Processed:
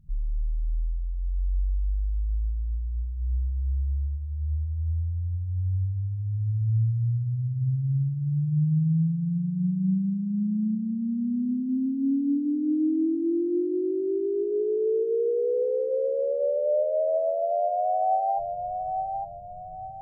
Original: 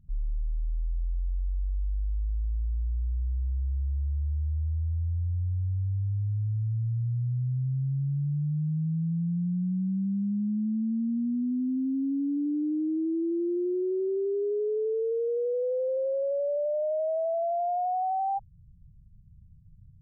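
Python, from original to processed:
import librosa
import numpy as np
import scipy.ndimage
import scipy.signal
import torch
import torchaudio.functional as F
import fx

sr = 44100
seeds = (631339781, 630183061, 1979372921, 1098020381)

y = fx.echo_thinned(x, sr, ms=857, feedback_pct=45, hz=600.0, wet_db=-3)
y = fx.room_shoebox(y, sr, seeds[0], volume_m3=530.0, walls='furnished', distance_m=0.49)
y = F.gain(torch.from_numpy(y), 2.0).numpy()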